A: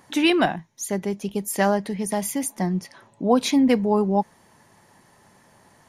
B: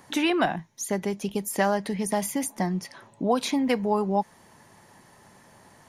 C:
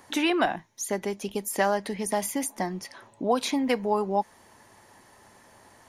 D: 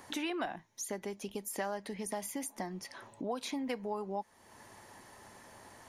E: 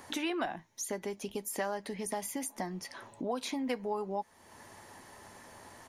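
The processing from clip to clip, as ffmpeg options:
-filter_complex "[0:a]acrossover=split=610|1600[a][b][c];[a]acompressor=threshold=-27dB:ratio=4[d];[b]acompressor=threshold=-25dB:ratio=4[e];[c]acompressor=threshold=-32dB:ratio=4[f];[d][e][f]amix=inputs=3:normalize=0,volume=1.5dB"
-af "equalizer=f=160:w=2.2:g=-10.5"
-af "acompressor=threshold=-44dB:ratio=2"
-filter_complex "[0:a]asplit=2[a][b];[b]adelay=12,volume=-13.5dB[c];[a][c]amix=inputs=2:normalize=0,volume=2dB"

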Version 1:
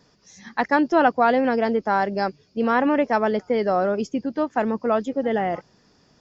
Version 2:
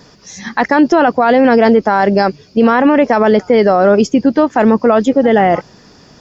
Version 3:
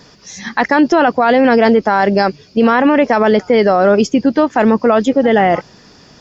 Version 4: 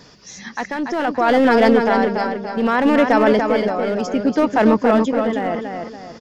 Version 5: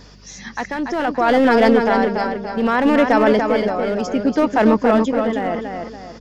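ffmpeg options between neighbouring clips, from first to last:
-af "alimiter=level_in=17dB:limit=-1dB:release=50:level=0:latency=1,volume=-1dB"
-af "equalizer=f=3.1k:w=0.61:g=3.5,volume=-1.5dB"
-filter_complex "[0:a]aeval=exprs='clip(val(0),-1,0.398)':c=same,tremolo=f=0.65:d=0.69,asplit=2[a][b];[b]adelay=286,lowpass=f=4.8k:p=1,volume=-5dB,asplit=2[c][d];[d]adelay=286,lowpass=f=4.8k:p=1,volume=0.4,asplit=2[e][f];[f]adelay=286,lowpass=f=4.8k:p=1,volume=0.4,asplit=2[g][h];[h]adelay=286,lowpass=f=4.8k:p=1,volume=0.4,asplit=2[i][j];[j]adelay=286,lowpass=f=4.8k:p=1,volume=0.4[k];[c][e][g][i][k]amix=inputs=5:normalize=0[l];[a][l]amix=inputs=2:normalize=0,volume=-2.5dB"
-af "aeval=exprs='val(0)+0.00562*(sin(2*PI*50*n/s)+sin(2*PI*2*50*n/s)/2+sin(2*PI*3*50*n/s)/3+sin(2*PI*4*50*n/s)/4+sin(2*PI*5*50*n/s)/5)':c=same"

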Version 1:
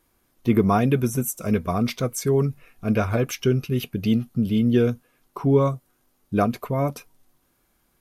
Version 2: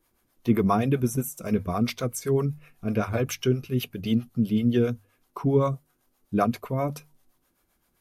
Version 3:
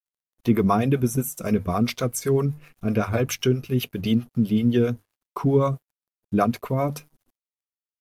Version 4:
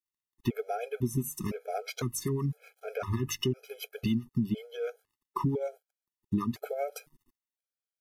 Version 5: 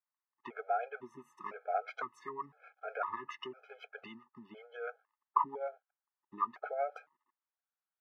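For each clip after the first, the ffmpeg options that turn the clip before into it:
-filter_complex "[0:a]acrossover=split=460[a][b];[a]aeval=exprs='val(0)*(1-0.7/2+0.7/2*cos(2*PI*7.7*n/s))':c=same[c];[b]aeval=exprs='val(0)*(1-0.7/2-0.7/2*cos(2*PI*7.7*n/s))':c=same[d];[c][d]amix=inputs=2:normalize=0,bandreject=f=50:t=h:w=6,bandreject=f=100:t=h:w=6,bandreject=f=150:t=h:w=6"
-filter_complex "[0:a]asplit=2[a][b];[b]acompressor=threshold=-29dB:ratio=6,volume=0dB[c];[a][c]amix=inputs=2:normalize=0,aeval=exprs='sgn(val(0))*max(abs(val(0))-0.002,0)':c=same"
-af "acompressor=threshold=-25dB:ratio=6,afftfilt=real='re*gt(sin(2*PI*0.99*pts/sr)*(1-2*mod(floor(b*sr/1024/430),2)),0)':imag='im*gt(sin(2*PI*0.99*pts/sr)*(1-2*mod(floor(b*sr/1024/430),2)),0)':win_size=1024:overlap=0.75"
-af "asuperpass=centerf=1100:order=4:qfactor=1.2,volume=5.5dB"

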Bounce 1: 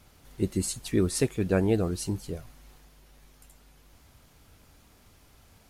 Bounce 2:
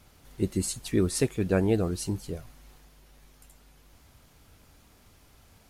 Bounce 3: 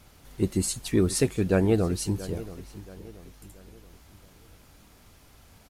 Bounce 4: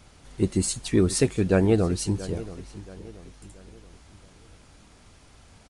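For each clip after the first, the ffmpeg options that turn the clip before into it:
-af anull
-filter_complex "[0:a]asplit=2[a][b];[b]asoftclip=type=tanh:threshold=-21dB,volume=-8dB[c];[a][c]amix=inputs=2:normalize=0,asplit=2[d][e];[e]adelay=679,lowpass=f=3.5k:p=1,volume=-16.5dB,asplit=2[f][g];[g]adelay=679,lowpass=f=3.5k:p=1,volume=0.42,asplit=2[h][i];[i]adelay=679,lowpass=f=3.5k:p=1,volume=0.42,asplit=2[j][k];[k]adelay=679,lowpass=f=3.5k:p=1,volume=0.42[l];[d][f][h][j][l]amix=inputs=5:normalize=0"
-af "aresample=22050,aresample=44100,volume=2dB"

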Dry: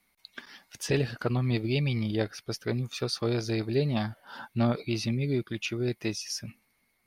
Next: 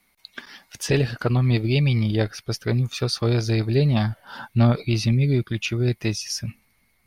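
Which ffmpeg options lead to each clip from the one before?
-af "asubboost=boost=2.5:cutoff=170,volume=6dB"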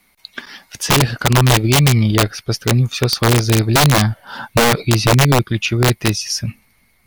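-af "aeval=exprs='(mod(4.73*val(0)+1,2)-1)/4.73':c=same,volume=7.5dB"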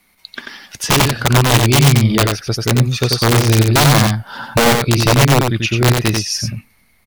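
-af "aecho=1:1:90:0.631"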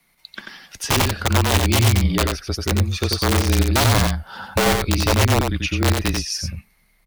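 -af "afreqshift=-33,volume=-5.5dB"

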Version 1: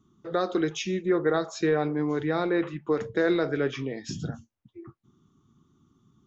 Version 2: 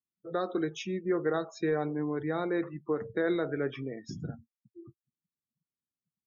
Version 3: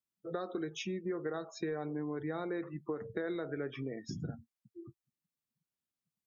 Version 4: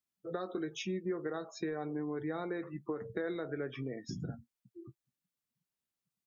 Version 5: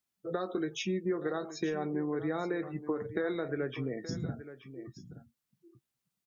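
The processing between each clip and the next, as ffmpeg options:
-af "afftdn=nr=36:nf=-40,highshelf=f=5.3k:g=-5,volume=-5dB"
-af "acompressor=threshold=-34dB:ratio=6"
-filter_complex "[0:a]asplit=2[a][b];[b]adelay=16,volume=-13dB[c];[a][c]amix=inputs=2:normalize=0"
-af "aecho=1:1:875:0.211,volume=4dB"

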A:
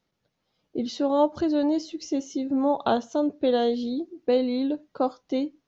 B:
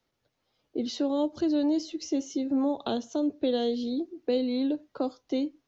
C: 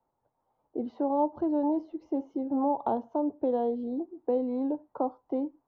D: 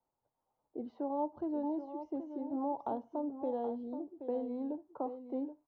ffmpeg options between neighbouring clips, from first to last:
-filter_complex "[0:a]equalizer=f=180:w=3.9:g=-10.5,acrossover=split=140|450|2500[a][b][c][d];[a]alimiter=level_in=25dB:limit=-24dB:level=0:latency=1,volume=-25dB[e];[c]acompressor=threshold=-37dB:ratio=6[f];[e][b][f][d]amix=inputs=4:normalize=0"
-af "lowpass=f=900:t=q:w=4.9,volume=-3.5dB"
-af "aecho=1:1:776:0.316,volume=-8.5dB"

